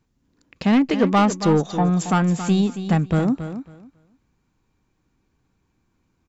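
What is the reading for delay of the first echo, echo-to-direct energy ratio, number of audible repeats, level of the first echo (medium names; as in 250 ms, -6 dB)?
275 ms, -11.0 dB, 2, -11.0 dB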